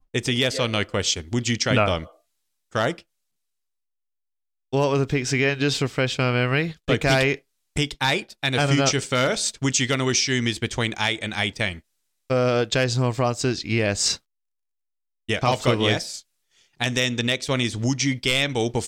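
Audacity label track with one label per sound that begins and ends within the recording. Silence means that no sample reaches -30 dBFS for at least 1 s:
4.730000	14.150000	sound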